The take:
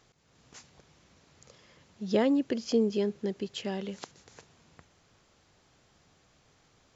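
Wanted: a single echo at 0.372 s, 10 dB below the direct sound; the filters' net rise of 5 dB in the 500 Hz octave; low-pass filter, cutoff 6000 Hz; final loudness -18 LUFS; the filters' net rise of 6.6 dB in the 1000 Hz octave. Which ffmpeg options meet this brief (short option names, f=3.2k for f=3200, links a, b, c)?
-af "lowpass=6k,equalizer=f=500:t=o:g=4.5,equalizer=f=1k:t=o:g=7,aecho=1:1:372:0.316,volume=8.5dB"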